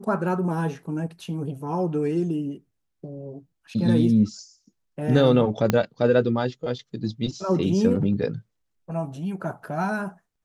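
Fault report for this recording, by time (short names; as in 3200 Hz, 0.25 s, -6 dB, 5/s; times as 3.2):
5.7 pop -6 dBFS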